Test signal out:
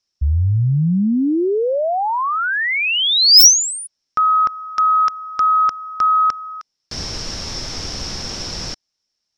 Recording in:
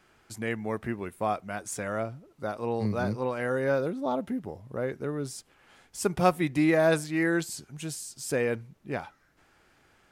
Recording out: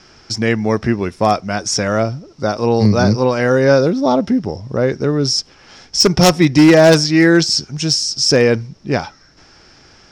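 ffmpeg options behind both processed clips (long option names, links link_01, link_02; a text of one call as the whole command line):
ffmpeg -i in.wav -filter_complex "[0:a]lowpass=frequency=5400:width_type=q:width=13,lowshelf=frequency=490:gain=5.5,asplit=2[link_01][link_02];[link_02]acontrast=76,volume=-2dB[link_03];[link_01][link_03]amix=inputs=2:normalize=0,aeval=exprs='0.501*(abs(mod(val(0)/0.501+3,4)-2)-1)':channel_layout=same,volume=3.5dB" out.wav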